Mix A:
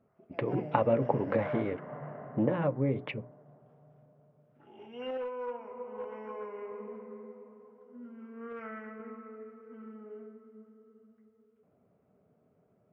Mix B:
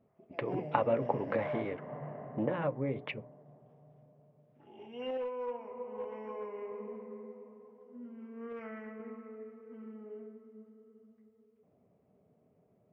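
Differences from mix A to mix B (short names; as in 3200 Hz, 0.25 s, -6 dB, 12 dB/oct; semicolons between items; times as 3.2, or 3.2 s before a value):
speech: add low shelf 440 Hz -7.5 dB; background: add bell 1400 Hz -9.5 dB 0.42 oct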